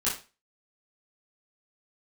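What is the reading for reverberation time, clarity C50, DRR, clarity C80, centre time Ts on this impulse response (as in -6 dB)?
0.30 s, 6.0 dB, -9.5 dB, 13.0 dB, 32 ms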